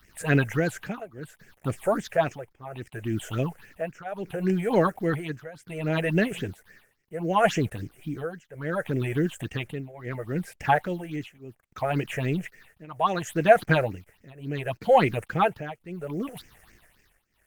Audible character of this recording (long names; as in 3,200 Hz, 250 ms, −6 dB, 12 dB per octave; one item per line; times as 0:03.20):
a quantiser's noise floor 10 bits, dither none
tremolo triangle 0.68 Hz, depth 95%
phaser sweep stages 6, 3.6 Hz, lowest notch 250–1,100 Hz
Opus